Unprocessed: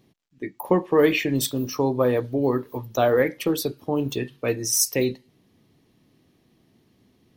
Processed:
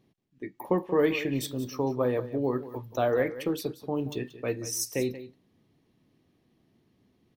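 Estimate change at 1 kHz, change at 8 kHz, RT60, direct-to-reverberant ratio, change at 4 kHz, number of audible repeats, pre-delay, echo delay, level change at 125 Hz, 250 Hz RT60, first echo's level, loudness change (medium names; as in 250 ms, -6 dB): -6.0 dB, -10.5 dB, no reverb, no reverb, -9.0 dB, 1, no reverb, 181 ms, -6.0 dB, no reverb, -14.5 dB, -6.5 dB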